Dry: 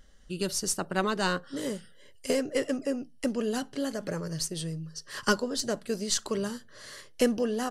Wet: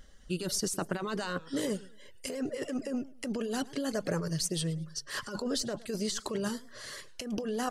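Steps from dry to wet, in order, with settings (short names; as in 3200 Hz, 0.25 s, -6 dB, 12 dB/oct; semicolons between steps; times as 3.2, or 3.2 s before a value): negative-ratio compressor -32 dBFS, ratio -1; reverb removal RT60 0.52 s; warbling echo 0.107 s, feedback 31%, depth 183 cents, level -20 dB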